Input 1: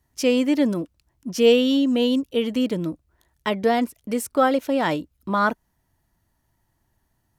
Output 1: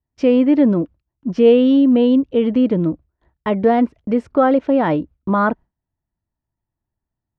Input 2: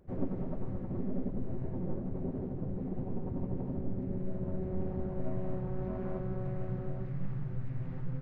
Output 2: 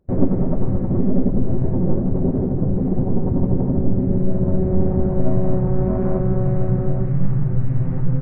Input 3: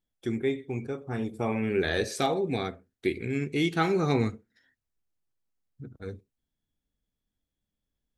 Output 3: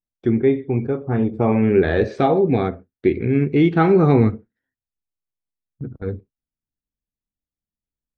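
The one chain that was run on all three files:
gate with hold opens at -39 dBFS; in parallel at -2.5 dB: limiter -17.5 dBFS; on the sum: tape spacing loss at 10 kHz 45 dB; normalise peaks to -3 dBFS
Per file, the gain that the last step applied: +5.0, +13.5, +8.5 dB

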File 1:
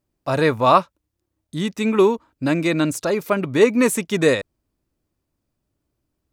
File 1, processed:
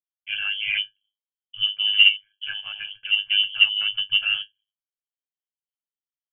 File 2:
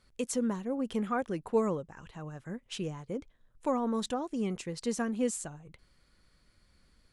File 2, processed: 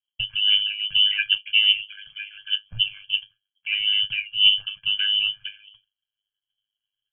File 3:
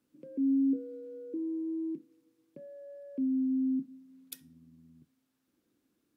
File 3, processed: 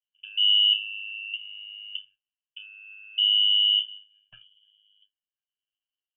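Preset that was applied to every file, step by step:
expander -46 dBFS; octave resonator G, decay 0.14 s; in parallel at -8.5 dB: soft clip -24 dBFS; on the sum: inverted band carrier 3200 Hz; ring modulator 51 Hz; match loudness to -20 LUFS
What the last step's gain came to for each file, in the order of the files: +6.5, +20.5, +25.0 dB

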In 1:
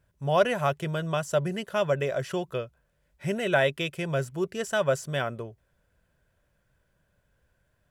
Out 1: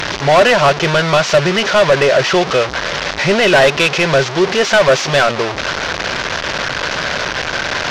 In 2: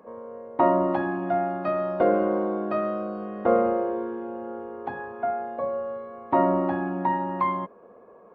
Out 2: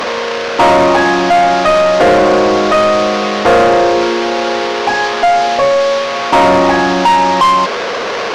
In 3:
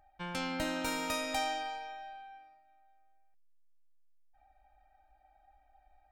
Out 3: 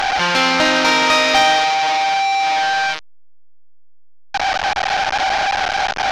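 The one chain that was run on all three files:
delta modulation 32 kbps, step -33 dBFS; overdrive pedal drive 24 dB, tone 5000 Hz, clips at -9 dBFS; gain +7.5 dB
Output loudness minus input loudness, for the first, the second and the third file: +14.5, +15.5, +20.5 LU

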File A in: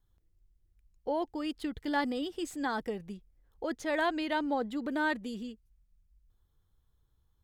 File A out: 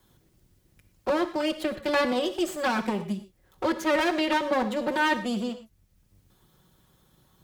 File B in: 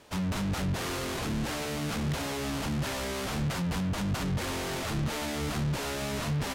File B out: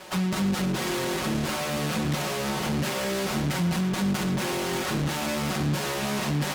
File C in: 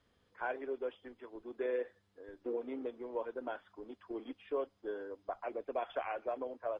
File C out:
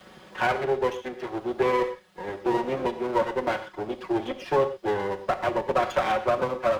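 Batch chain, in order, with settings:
minimum comb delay 5.4 ms; non-linear reverb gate 0.14 s flat, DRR 10.5 dB; dynamic EQ 210 Hz, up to +4 dB, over -44 dBFS, Q 1.1; HPF 140 Hz 6 dB/oct; three-band squash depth 40%; match loudness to -27 LUFS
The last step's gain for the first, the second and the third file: +8.0, +5.0, +16.0 dB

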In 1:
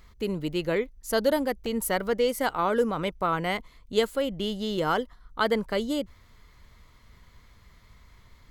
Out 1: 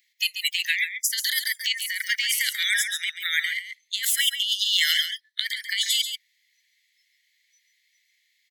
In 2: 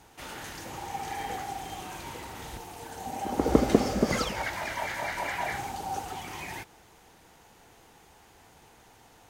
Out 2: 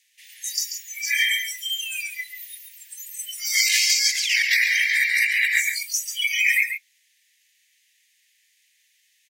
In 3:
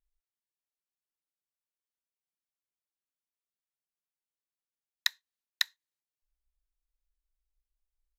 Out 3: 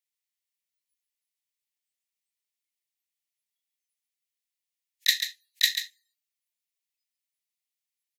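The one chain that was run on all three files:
steep high-pass 1800 Hz 96 dB/oct; spectral noise reduction 29 dB; negative-ratio compressor -44 dBFS, ratio -1; on a send: echo 0.138 s -8.5 dB; on the sum: normalise peaks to -6 dBFS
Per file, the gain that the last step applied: +19.5, +23.0, +21.5 dB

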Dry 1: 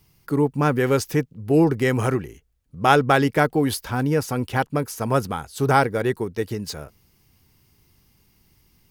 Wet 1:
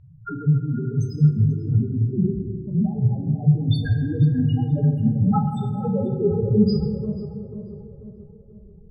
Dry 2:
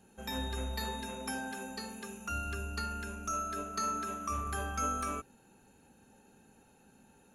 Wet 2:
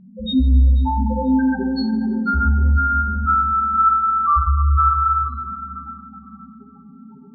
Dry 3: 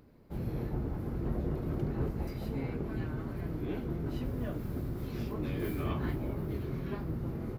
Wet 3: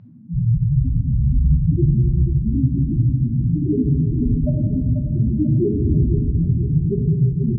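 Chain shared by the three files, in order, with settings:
bell 160 Hz +2.5 dB 1.1 oct; notches 50/100/150 Hz; negative-ratio compressor -27 dBFS, ratio -0.5; loudest bins only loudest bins 1; air absorption 210 m; on a send: tape echo 0.489 s, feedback 56%, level -8.5 dB, low-pass 1000 Hz; on the sum: plate-style reverb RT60 1.8 s, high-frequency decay 0.4×, DRR 3 dB; normalise peaks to -6 dBFS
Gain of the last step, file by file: +14.0, +27.0, +24.5 dB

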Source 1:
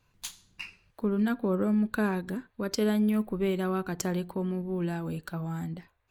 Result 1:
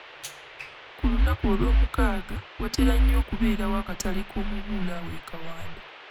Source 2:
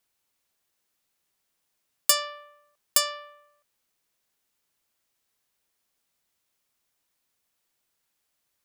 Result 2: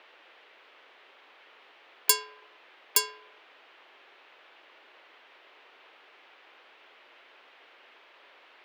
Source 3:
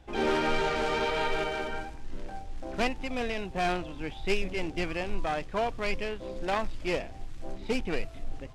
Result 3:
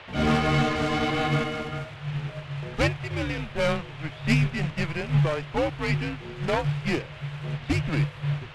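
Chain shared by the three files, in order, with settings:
frequency shift -160 Hz; band noise 350–3100 Hz -45 dBFS; upward expander 1.5:1, over -37 dBFS; match loudness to -27 LUFS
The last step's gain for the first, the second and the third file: +6.5, -1.5, +5.5 dB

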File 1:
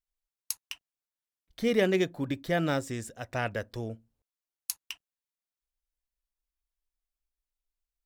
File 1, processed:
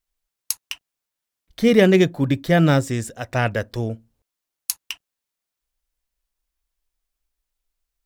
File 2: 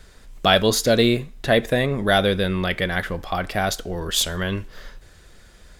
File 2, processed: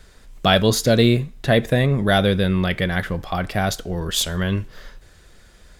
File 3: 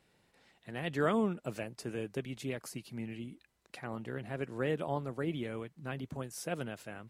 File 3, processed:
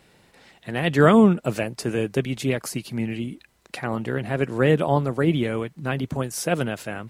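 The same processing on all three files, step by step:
dynamic EQ 130 Hz, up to +8 dB, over -39 dBFS, Q 0.94; normalise peaks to -2 dBFS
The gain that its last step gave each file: +9.0, -0.5, +14.0 dB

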